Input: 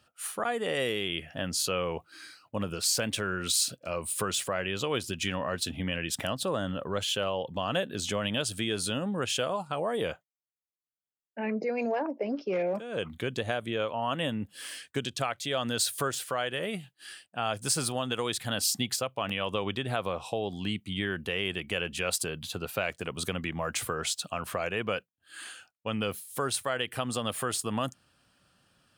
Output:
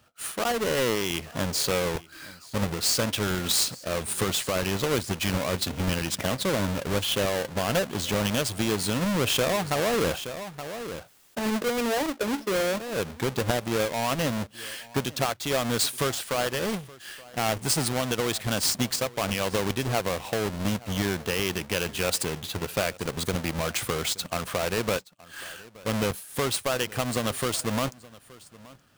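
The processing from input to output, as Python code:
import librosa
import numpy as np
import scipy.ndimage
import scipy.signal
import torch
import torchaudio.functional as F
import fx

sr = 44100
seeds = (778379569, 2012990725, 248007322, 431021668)

y = fx.halfwave_hold(x, sr)
y = y + 10.0 ** (-21.5 / 20.0) * np.pad(y, (int(873 * sr / 1000.0), 0))[:len(y)]
y = fx.env_flatten(y, sr, amount_pct=50, at=(9.01, 11.39))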